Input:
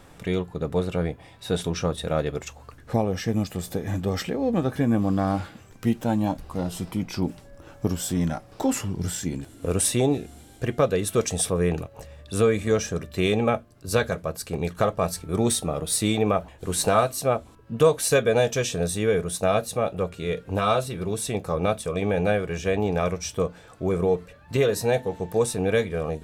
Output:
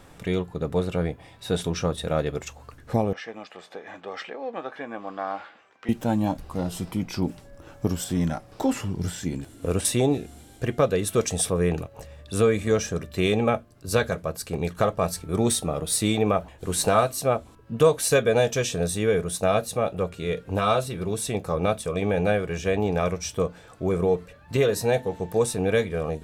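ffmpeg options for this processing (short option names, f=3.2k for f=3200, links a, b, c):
-filter_complex "[0:a]asettb=1/sr,asplit=3[a][b][c];[a]atrim=end=3.134[d];[b]atrim=start=3.13:end=5.89,asetpts=PTS-STARTPTS,afade=t=in:d=0.004:c=qsin,afade=t=out:st=2.756:d=0.004:c=qsin,highpass=690,lowpass=2.8k[e];[c]atrim=start=5.886[f];[d][e]acrossfade=d=0.004:c1=hsin:c2=qsin[g];[g][f]acrossfade=d=0.004:c1=qsin:c2=hsin,asettb=1/sr,asplit=3[h][i][j];[h]atrim=end=8.044[k];[i]atrim=start=8.04:end=9.85,asetpts=PTS-STARTPTS,afade=t=in:d=0.004:c=qsin,afade=t=out:st=1.806:d=0.004:c=qsin,acrossover=split=4400[l][m];[m]acompressor=threshold=-37dB:ratio=4:attack=1:release=60[n];[l][n]amix=inputs=2:normalize=0[o];[j]atrim=start=9.846[p];[k][o]acrossfade=d=0.004:c1=hsin:c2=qsin[q];[q][p]acrossfade=d=0.004:c1=qsin:c2=hsin"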